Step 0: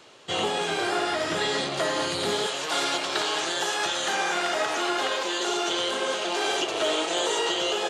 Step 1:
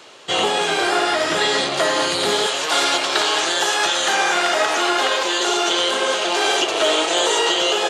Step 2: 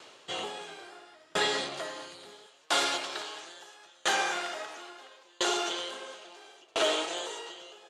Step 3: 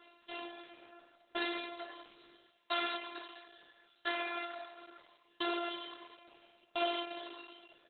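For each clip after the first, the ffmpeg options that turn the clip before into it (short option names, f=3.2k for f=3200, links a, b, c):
-af "lowshelf=f=210:g=-10,volume=8.5dB"
-af "aeval=exprs='val(0)*pow(10,-35*if(lt(mod(0.74*n/s,1),2*abs(0.74)/1000),1-mod(0.74*n/s,1)/(2*abs(0.74)/1000),(mod(0.74*n/s,1)-2*abs(0.74)/1000)/(1-2*abs(0.74)/1000))/20)':c=same,volume=-6.5dB"
-af "afftfilt=real='hypot(re,im)*cos(PI*b)':imag='0':win_size=512:overlap=0.75,volume=-4dB" -ar 48000 -c:a libopus -b:a 8k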